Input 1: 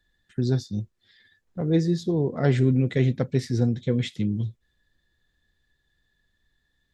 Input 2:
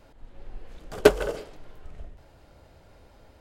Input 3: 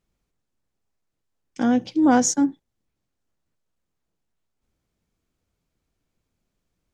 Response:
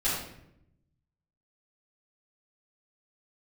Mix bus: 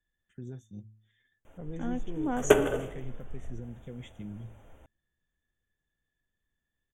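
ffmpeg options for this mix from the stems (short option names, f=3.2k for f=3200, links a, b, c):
-filter_complex "[0:a]bandreject=f=108.4:t=h:w=4,bandreject=f=216.8:t=h:w=4,bandreject=f=325.2:t=h:w=4,alimiter=limit=-19dB:level=0:latency=1:release=251,volume=-13.5dB[a];[1:a]adelay=1450,volume=-4dB,asplit=2[b][c];[c]volume=-16dB[d];[2:a]adelay=200,volume=-15dB[e];[3:a]atrim=start_sample=2205[f];[d][f]afir=irnorm=-1:irlink=0[g];[a][b][e][g]amix=inputs=4:normalize=0,asuperstop=centerf=4600:order=12:qfactor=1.9"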